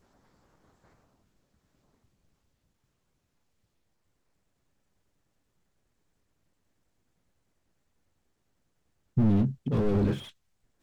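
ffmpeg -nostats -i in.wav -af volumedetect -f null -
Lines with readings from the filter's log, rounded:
mean_volume: -34.7 dB
max_volume: -13.1 dB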